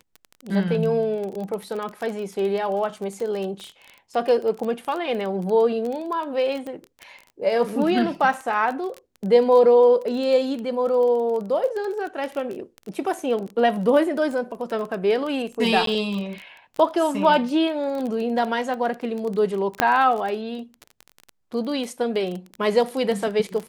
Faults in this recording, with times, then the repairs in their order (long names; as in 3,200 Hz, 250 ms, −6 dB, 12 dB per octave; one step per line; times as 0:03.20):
surface crackle 22 per second −27 dBFS
0:06.67: click −23 dBFS
0:15.86–0:15.87: drop-out 13 ms
0:19.80: click −3 dBFS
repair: click removal
repair the gap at 0:15.86, 13 ms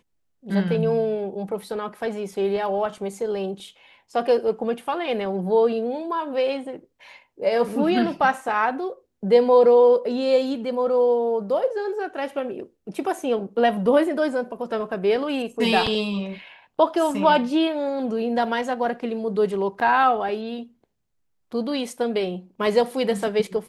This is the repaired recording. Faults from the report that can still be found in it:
0:19.80: click